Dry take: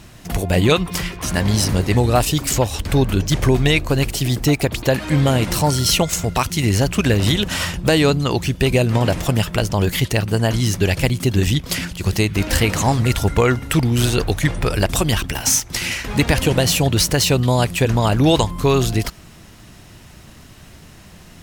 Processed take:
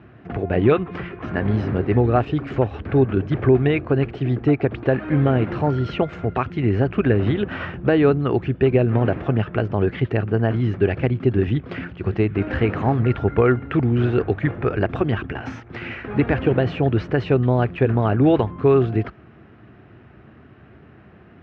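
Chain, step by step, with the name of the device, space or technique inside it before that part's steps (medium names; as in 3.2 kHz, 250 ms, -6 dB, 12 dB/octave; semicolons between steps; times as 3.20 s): bass cabinet (cabinet simulation 75–2000 Hz, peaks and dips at 88 Hz -6 dB, 170 Hz -7 dB, 390 Hz +4 dB, 560 Hz -4 dB, 960 Hz -8 dB, 2 kHz -5 dB)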